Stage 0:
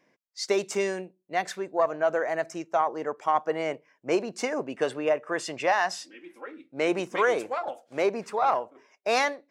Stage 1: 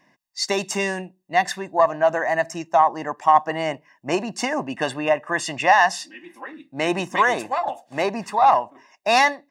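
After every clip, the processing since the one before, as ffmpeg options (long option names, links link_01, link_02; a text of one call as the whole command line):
ffmpeg -i in.wav -af "aecho=1:1:1.1:0.71,volume=6dB" out.wav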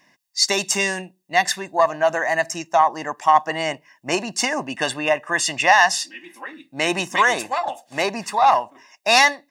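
ffmpeg -i in.wav -af "highshelf=frequency=2000:gain=10.5,volume=-1.5dB" out.wav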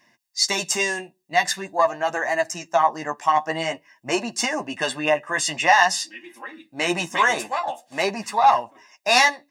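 ffmpeg -i in.wav -af "flanger=delay=8.5:depth=5.2:regen=16:speed=0.47:shape=sinusoidal,volume=1.5dB" out.wav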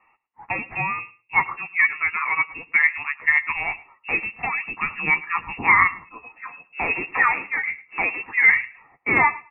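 ffmpeg -i in.wav -af "aecho=1:1:107|214:0.106|0.0169,lowpass=frequency=2500:width_type=q:width=0.5098,lowpass=frequency=2500:width_type=q:width=0.6013,lowpass=frequency=2500:width_type=q:width=0.9,lowpass=frequency=2500:width_type=q:width=2.563,afreqshift=-2900" out.wav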